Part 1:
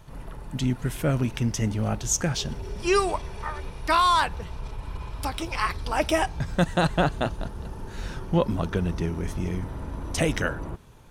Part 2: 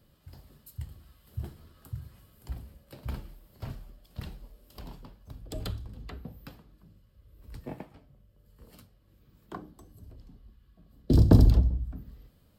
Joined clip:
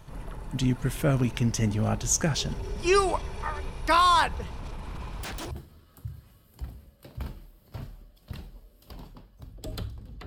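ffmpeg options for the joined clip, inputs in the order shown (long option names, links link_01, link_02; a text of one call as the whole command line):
ffmpeg -i cue0.wav -i cue1.wav -filter_complex "[0:a]asettb=1/sr,asplit=3[link_01][link_02][link_03];[link_01]atrim=end=4.464[link_04];[link_02]atrim=start=4.46:end=5.51,asetpts=PTS-STARTPTS,afade=type=in:duration=0.004:curve=qsin,afade=type=out:start_time=1.046:duration=0.004:curve=qsin,aeval=exprs='0.0282*(abs(mod(val(0)/0.0282+3,4)-2)-1)':channel_layout=same[link_05];[link_03]atrim=start=5.506[link_06];[link_04][link_05]acrossfade=duration=0.004:curve1=hsin:curve2=qsin[link_07];[link_07][link_06]acrossfade=duration=0.004:curve1=qsin:curve2=hsin,apad=whole_dur=10.26,atrim=end=10.26,atrim=end=5.512[link_08];[1:a]atrim=start=1.388:end=6.14[link_09];[link_08][link_09]acrossfade=duration=0.004:curve1=hsin:curve2=hsin" out.wav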